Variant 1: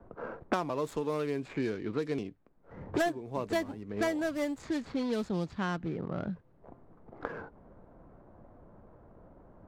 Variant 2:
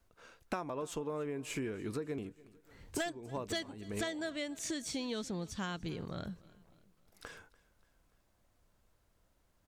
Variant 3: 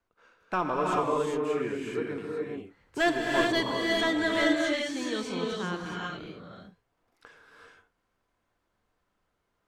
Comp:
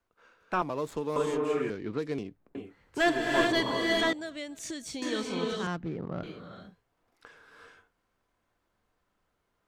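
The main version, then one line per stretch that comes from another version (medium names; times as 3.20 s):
3
0.62–1.16 s: from 1
1.70–2.55 s: from 1
4.13–5.02 s: from 2
5.67–6.23 s: from 1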